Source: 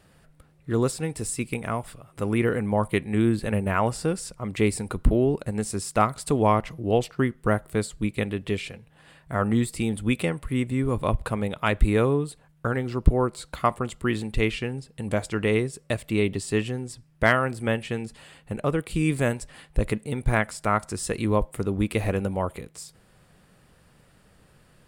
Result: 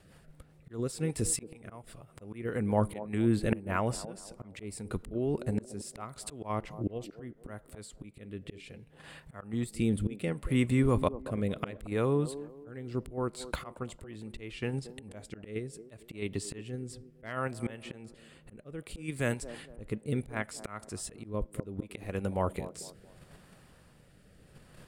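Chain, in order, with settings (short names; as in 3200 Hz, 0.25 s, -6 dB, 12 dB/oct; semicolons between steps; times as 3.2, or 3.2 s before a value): rotary speaker horn 5 Hz, later 0.7 Hz, at 4.69; auto swell 0.659 s; in parallel at -1 dB: level quantiser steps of 19 dB; on the sum: band-limited delay 0.227 s, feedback 35%, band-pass 450 Hz, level -12 dB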